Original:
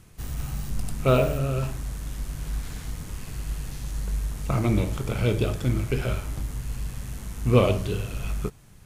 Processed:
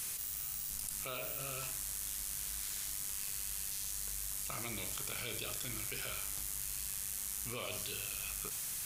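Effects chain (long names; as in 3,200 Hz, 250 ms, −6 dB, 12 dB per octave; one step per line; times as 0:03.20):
first-order pre-emphasis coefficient 0.97
envelope flattener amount 100%
level −5.5 dB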